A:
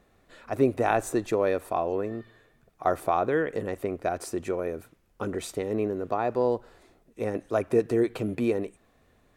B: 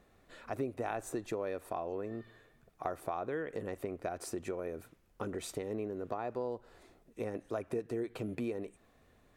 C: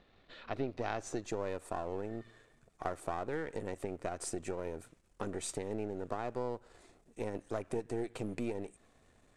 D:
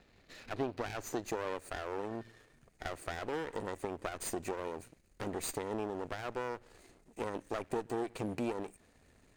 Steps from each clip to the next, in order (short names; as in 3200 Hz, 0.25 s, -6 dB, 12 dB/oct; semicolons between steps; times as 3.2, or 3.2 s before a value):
compressor 3:1, threshold -34 dBFS, peak gain reduction 13 dB; gain -2.5 dB
half-wave gain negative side -7 dB; low-pass sweep 3800 Hz -> 8400 Hz, 0.46–1.54; gain +1.5 dB
minimum comb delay 0.45 ms; gain +3.5 dB